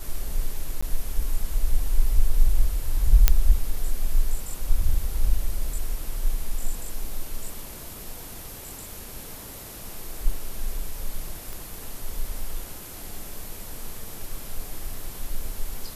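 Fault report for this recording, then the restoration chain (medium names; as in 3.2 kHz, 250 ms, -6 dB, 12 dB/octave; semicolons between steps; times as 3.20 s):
0.81–0.82 s: dropout 15 ms
3.28 s: pop -1 dBFS
11.53 s: pop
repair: de-click; interpolate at 0.81 s, 15 ms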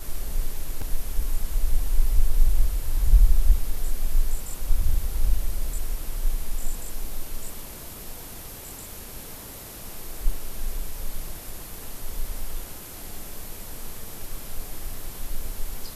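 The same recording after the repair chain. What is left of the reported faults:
nothing left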